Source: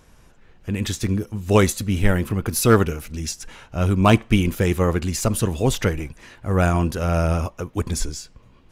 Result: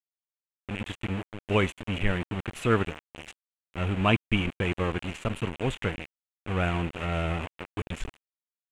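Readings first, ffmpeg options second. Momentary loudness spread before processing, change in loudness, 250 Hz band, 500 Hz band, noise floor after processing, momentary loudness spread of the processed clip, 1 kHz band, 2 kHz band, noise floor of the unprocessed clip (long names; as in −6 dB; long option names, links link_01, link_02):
13 LU, −8.5 dB, −9.0 dB, −9.0 dB, below −85 dBFS, 17 LU, −7.5 dB, −3.5 dB, −52 dBFS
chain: -af "aeval=exprs='val(0)*gte(abs(val(0)),0.075)':channel_layout=same,lowpass=frequency=7800:width_type=q:width=2.1,highshelf=frequency=3800:width_type=q:width=3:gain=-11.5,volume=-9dB"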